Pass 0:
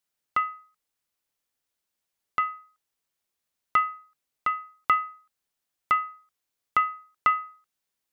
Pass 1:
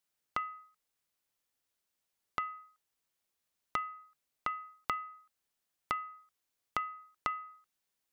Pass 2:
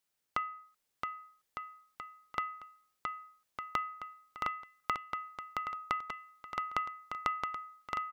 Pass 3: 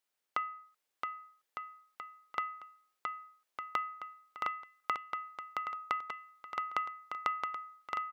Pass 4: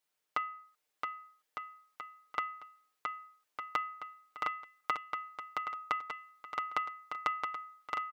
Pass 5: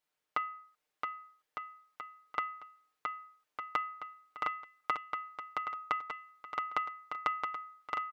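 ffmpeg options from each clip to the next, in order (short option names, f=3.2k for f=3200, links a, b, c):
-af "acompressor=threshold=-32dB:ratio=5,volume=-1.5dB"
-af "aecho=1:1:670|1206|1635|1978|2252:0.631|0.398|0.251|0.158|0.1,volume=1dB"
-af "bass=f=250:g=-12,treble=f=4k:g=-4"
-af "aecho=1:1:6.6:0.65"
-af "highshelf=f=4.5k:g=-7.5,volume=1dB"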